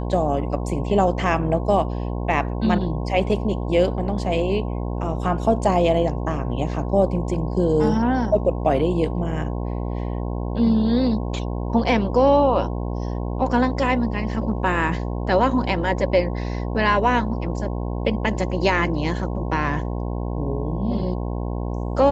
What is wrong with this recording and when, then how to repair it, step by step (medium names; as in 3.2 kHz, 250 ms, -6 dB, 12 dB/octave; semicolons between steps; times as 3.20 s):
buzz 60 Hz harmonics 18 -26 dBFS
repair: de-hum 60 Hz, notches 18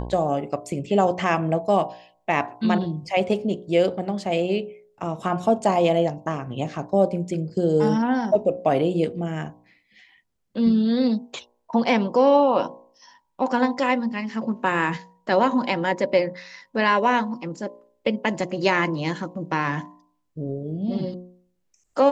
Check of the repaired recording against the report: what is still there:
nothing left